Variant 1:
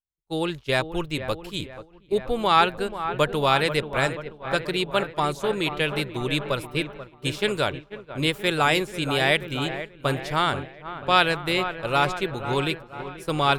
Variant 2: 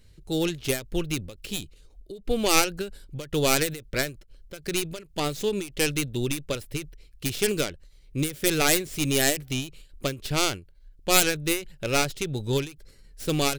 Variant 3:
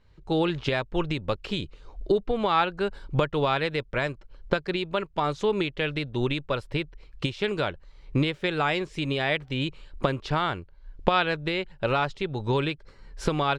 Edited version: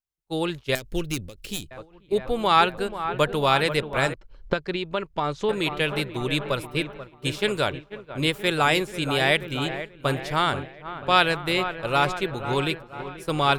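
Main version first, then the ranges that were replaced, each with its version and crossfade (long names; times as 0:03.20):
1
0:00.75–0:01.71: punch in from 2
0:04.14–0:05.49: punch in from 3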